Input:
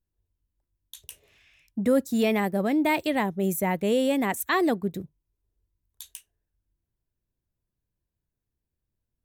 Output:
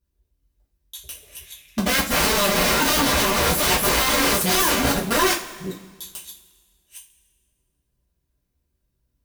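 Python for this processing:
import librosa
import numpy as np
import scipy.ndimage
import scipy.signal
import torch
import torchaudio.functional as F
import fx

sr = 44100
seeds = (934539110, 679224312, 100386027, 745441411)

y = fx.reverse_delay(x, sr, ms=410, wet_db=-3.0)
y = (np.mod(10.0 ** (22.0 / 20.0) * y + 1.0, 2.0) - 1.0) / 10.0 ** (22.0 / 20.0)
y = fx.rev_double_slope(y, sr, seeds[0], early_s=0.28, late_s=1.6, knee_db=-18, drr_db=-6.5)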